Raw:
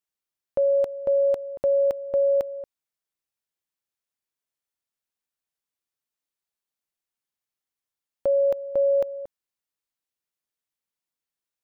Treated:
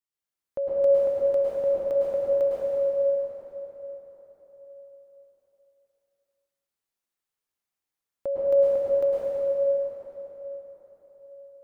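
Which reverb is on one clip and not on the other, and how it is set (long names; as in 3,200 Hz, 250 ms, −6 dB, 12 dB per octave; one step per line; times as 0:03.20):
dense smooth reverb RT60 4.4 s, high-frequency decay 0.65×, pre-delay 95 ms, DRR −8.5 dB
level −7 dB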